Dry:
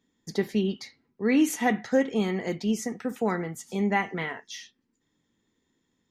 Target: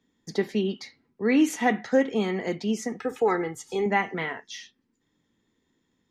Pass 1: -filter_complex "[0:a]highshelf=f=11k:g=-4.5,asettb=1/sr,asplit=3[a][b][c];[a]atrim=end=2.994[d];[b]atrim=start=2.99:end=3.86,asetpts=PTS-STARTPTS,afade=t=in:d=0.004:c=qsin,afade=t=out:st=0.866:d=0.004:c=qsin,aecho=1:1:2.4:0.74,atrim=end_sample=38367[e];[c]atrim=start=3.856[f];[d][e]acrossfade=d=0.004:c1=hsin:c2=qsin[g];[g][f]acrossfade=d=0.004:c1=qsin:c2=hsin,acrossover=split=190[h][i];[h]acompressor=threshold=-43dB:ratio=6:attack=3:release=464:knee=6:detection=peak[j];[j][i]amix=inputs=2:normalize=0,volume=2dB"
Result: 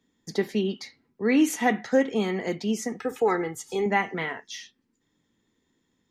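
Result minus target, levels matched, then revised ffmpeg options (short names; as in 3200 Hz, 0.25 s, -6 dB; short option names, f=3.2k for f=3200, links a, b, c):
8000 Hz band +2.5 dB
-filter_complex "[0:a]highshelf=f=11k:g=-15.5,asettb=1/sr,asplit=3[a][b][c];[a]atrim=end=2.994[d];[b]atrim=start=2.99:end=3.86,asetpts=PTS-STARTPTS,afade=t=in:d=0.004:c=qsin,afade=t=out:st=0.866:d=0.004:c=qsin,aecho=1:1:2.4:0.74,atrim=end_sample=38367[e];[c]atrim=start=3.856[f];[d][e]acrossfade=d=0.004:c1=hsin:c2=qsin[g];[g][f]acrossfade=d=0.004:c1=qsin:c2=hsin,acrossover=split=190[h][i];[h]acompressor=threshold=-43dB:ratio=6:attack=3:release=464:knee=6:detection=peak[j];[j][i]amix=inputs=2:normalize=0,volume=2dB"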